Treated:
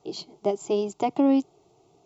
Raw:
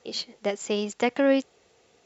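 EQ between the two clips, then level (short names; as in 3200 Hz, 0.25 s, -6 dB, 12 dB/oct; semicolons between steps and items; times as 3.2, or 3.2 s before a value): tilt shelf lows +9 dB, about 1300 Hz; high shelf 4600 Hz +5.5 dB; fixed phaser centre 340 Hz, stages 8; 0.0 dB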